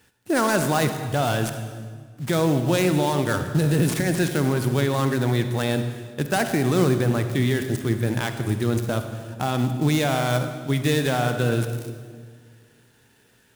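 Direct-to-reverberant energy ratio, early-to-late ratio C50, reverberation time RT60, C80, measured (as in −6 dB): 7.0 dB, 7.5 dB, 1.8 s, 9.0 dB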